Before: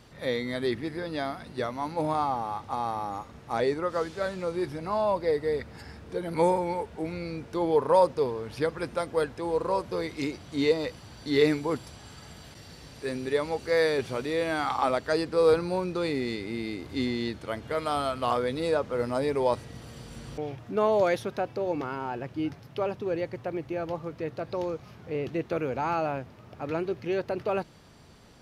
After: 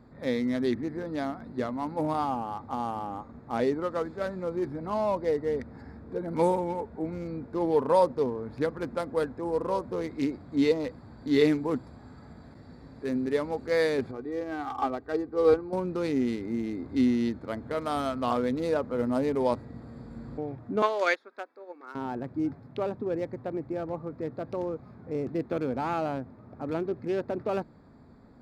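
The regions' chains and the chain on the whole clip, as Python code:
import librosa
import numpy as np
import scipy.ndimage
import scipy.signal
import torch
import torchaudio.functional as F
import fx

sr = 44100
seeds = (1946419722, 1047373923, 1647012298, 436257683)

y = fx.chain(x, sr, fx.lowpass(hz=2300.0, slope=6),
    fx.comb(ms=2.6, depth=0.61),
    fx.upward_expand(threshold_db=-31.0, expansion=1.5), at=(14.11, 15.73))
y = fx.chain(y, sr, fx.highpass(hz=330.0, slope=24),
    fx.band_shelf(hz=2800.0, db=11.0, octaves=3.0),
    fx.upward_expand(threshold_db=-31.0, expansion=2.5), at=(20.82, 21.95))
y = fx.wiener(y, sr, points=15)
y = fx.peak_eq(y, sr, hz=250.0, db=9.0, octaves=0.45)
y = y * librosa.db_to_amplitude(-1.5)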